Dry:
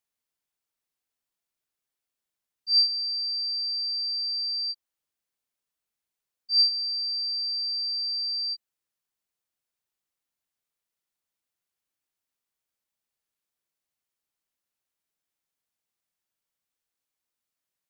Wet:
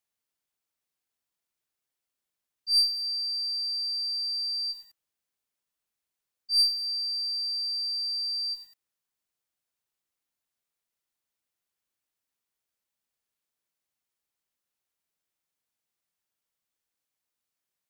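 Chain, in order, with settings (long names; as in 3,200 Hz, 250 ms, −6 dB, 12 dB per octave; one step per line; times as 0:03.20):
one-sided soft clipper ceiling −18.5 dBFS
feedback echo at a low word length 96 ms, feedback 35%, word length 8 bits, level −12.5 dB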